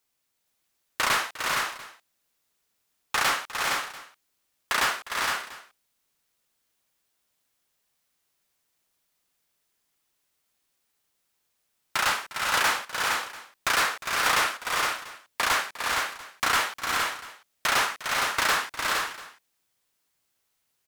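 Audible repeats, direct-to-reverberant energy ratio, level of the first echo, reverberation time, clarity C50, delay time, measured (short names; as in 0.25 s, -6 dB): 4, none, -16.0 dB, none, none, 0.355 s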